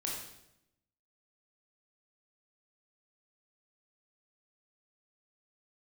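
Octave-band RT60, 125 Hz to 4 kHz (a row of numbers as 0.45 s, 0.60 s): 1.1 s, 1.0 s, 0.90 s, 0.75 s, 0.75 s, 0.75 s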